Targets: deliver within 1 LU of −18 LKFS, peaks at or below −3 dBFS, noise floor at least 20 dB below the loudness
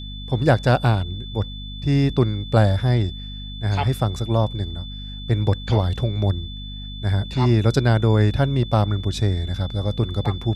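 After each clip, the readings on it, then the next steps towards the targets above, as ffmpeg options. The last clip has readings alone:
mains hum 50 Hz; hum harmonics up to 250 Hz; level of the hum −32 dBFS; interfering tone 3,500 Hz; level of the tone −37 dBFS; integrated loudness −21.5 LKFS; sample peak −2.5 dBFS; target loudness −18.0 LKFS
→ -af "bandreject=frequency=50:width_type=h:width=6,bandreject=frequency=100:width_type=h:width=6,bandreject=frequency=150:width_type=h:width=6,bandreject=frequency=200:width_type=h:width=6,bandreject=frequency=250:width_type=h:width=6"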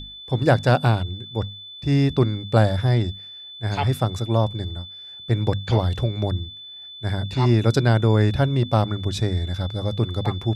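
mains hum none found; interfering tone 3,500 Hz; level of the tone −37 dBFS
→ -af "bandreject=frequency=3500:width=30"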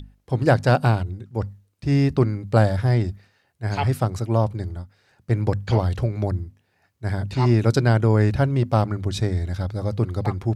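interfering tone none found; integrated loudness −22.0 LKFS; sample peak −3.0 dBFS; target loudness −18.0 LKFS
→ -af "volume=4dB,alimiter=limit=-3dB:level=0:latency=1"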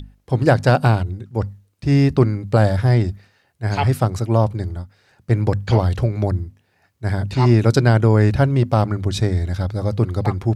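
integrated loudness −18.5 LKFS; sample peak −3.0 dBFS; background noise floor −63 dBFS

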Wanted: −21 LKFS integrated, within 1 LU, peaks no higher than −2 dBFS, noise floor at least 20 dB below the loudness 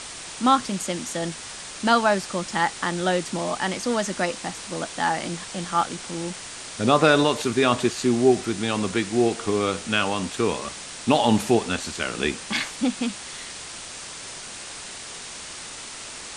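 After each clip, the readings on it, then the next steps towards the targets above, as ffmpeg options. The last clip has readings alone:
background noise floor −38 dBFS; target noise floor −44 dBFS; integrated loudness −24.0 LKFS; sample peak −4.0 dBFS; target loudness −21.0 LKFS
→ -af "afftdn=noise_reduction=6:noise_floor=-38"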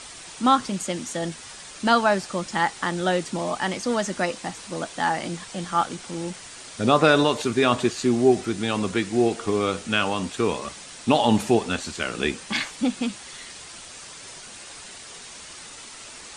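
background noise floor −42 dBFS; target noise floor −44 dBFS
→ -af "afftdn=noise_reduction=6:noise_floor=-42"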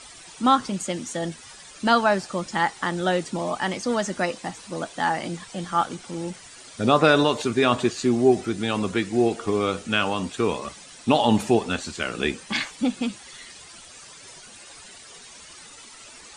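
background noise floor −46 dBFS; integrated loudness −24.0 LKFS; sample peak −4.0 dBFS; target loudness −21.0 LKFS
→ -af "volume=3dB,alimiter=limit=-2dB:level=0:latency=1"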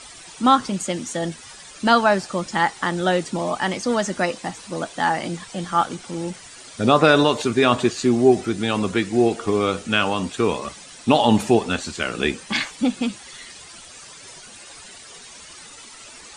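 integrated loudness −21.0 LKFS; sample peak −2.0 dBFS; background noise floor −43 dBFS

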